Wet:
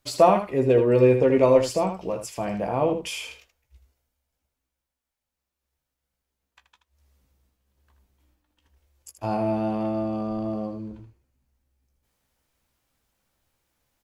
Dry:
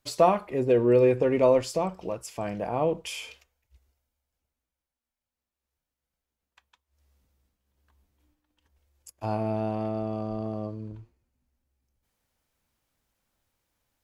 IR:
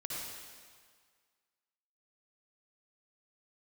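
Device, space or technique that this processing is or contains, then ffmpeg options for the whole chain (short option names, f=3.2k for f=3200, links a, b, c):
slapback doubling: -filter_complex "[0:a]asplit=3[a][b][c];[b]adelay=15,volume=-7.5dB[d];[c]adelay=79,volume=-8.5dB[e];[a][d][e]amix=inputs=3:normalize=0,volume=2.5dB"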